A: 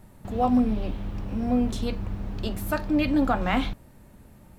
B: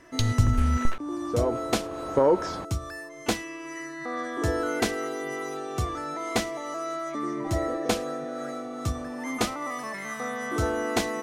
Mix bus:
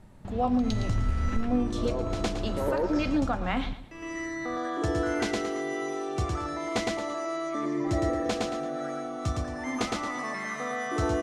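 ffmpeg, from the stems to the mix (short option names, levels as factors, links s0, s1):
-filter_complex "[0:a]lowpass=7500,volume=0.794,asplit=3[s0][s1][s2];[s1]volume=0.2[s3];[1:a]lowpass=7100,asoftclip=type=tanh:threshold=0.282,adelay=400,volume=0.891,asplit=3[s4][s5][s6];[s4]atrim=end=3.22,asetpts=PTS-STARTPTS,afade=t=out:st=3.216:d=0.004:c=hsin[s7];[s5]atrim=start=3.22:end=3.91,asetpts=PTS-STARTPTS,volume=0[s8];[s6]atrim=start=3.91,asetpts=PTS-STARTPTS,afade=t=in:d=0.004:c=hsin[s9];[s7][s8][s9]concat=n=3:v=0:a=1,asplit=2[s10][s11];[s11]volume=0.708[s12];[s2]apad=whole_len=512665[s13];[s10][s13]sidechaincompress=threshold=0.01:ratio=8:attack=41:release=390[s14];[s3][s12]amix=inputs=2:normalize=0,aecho=0:1:112|224|336|448:1|0.3|0.09|0.027[s15];[s0][s14][s15]amix=inputs=3:normalize=0,alimiter=limit=0.141:level=0:latency=1:release=311"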